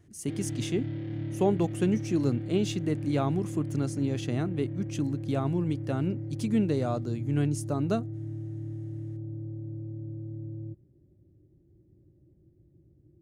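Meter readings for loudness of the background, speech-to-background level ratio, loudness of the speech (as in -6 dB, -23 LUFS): -37.0 LUFS, 7.0 dB, -30.0 LUFS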